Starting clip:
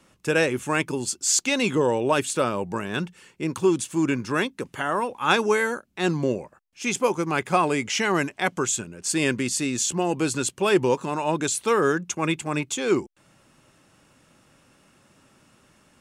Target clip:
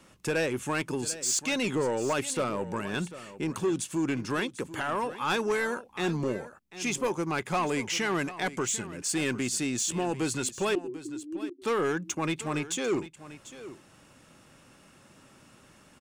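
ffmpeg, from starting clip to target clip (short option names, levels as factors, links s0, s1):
-filter_complex "[0:a]asplit=2[s0][s1];[s1]acompressor=threshold=0.02:ratio=6,volume=1.41[s2];[s0][s2]amix=inputs=2:normalize=0,asoftclip=type=tanh:threshold=0.168,asettb=1/sr,asplit=3[s3][s4][s5];[s3]atrim=end=10.754[s6];[s4]atrim=start=10.75:end=11.62,asetpts=PTS-STARTPTS,afade=t=in:d=0.004:c=qsin,afade=t=out:st=0.866:d=0.004:c=qsin,asuperpass=centerf=320:order=8:qfactor=3.2[s7];[s5]atrim=start=11.616[s8];[s6][s7]acrossfade=d=0.004:c1=hsin:c2=qsin[s9];[s9][s8]acrossfade=d=0.004:c1=qsin:c2=hsin,aecho=1:1:744:0.178,volume=0.501"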